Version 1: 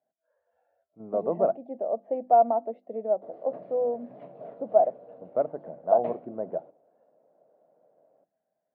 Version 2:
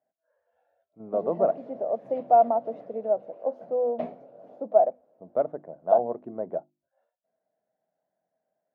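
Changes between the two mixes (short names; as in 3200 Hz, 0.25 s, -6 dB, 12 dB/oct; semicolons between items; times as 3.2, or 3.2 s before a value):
background: entry -2.05 s; master: remove air absorption 270 m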